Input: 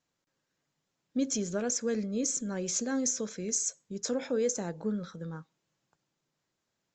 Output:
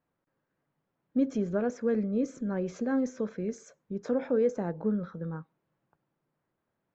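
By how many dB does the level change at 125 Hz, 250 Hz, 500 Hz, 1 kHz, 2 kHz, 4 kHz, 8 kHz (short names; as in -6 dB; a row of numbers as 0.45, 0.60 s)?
+3.5 dB, +3.5 dB, +3.5 dB, +3.0 dB, -0.5 dB, under -15 dB, -23.0 dB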